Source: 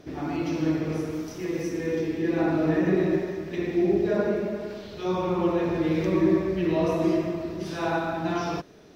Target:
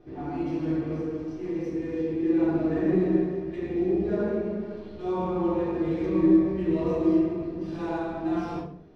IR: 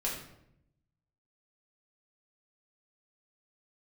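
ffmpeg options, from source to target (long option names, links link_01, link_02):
-filter_complex "[0:a]adynamicsmooth=sensitivity=7:basefreq=3400,tiltshelf=frequency=970:gain=3[link_01];[1:a]atrim=start_sample=2205,asetrate=74970,aresample=44100[link_02];[link_01][link_02]afir=irnorm=-1:irlink=0,volume=-5dB"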